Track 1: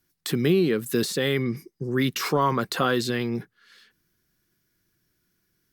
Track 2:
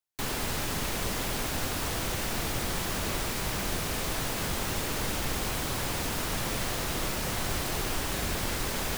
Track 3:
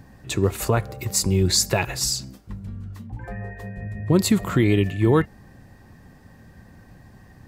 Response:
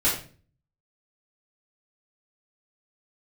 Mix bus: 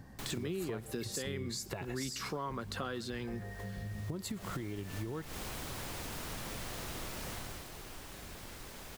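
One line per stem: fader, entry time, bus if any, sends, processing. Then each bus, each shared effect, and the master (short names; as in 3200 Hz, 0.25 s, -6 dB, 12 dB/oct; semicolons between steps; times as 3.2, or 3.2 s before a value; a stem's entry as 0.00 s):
-5.0 dB, 0.00 s, no bus, no send, echo send -23 dB, LPF 11000 Hz
7.33 s -7 dB -> 7.68 s -17 dB, 0.00 s, bus A, no send, echo send -21.5 dB, auto duck -17 dB, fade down 1.20 s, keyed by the first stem
-5.5 dB, 0.00 s, bus A, no send, no echo send, notch 2500 Hz
bus A: 0.0 dB, compressor, threshold -28 dBFS, peak gain reduction 10 dB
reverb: off
echo: echo 0.133 s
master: compressor 3:1, threshold -39 dBFS, peak gain reduction 13 dB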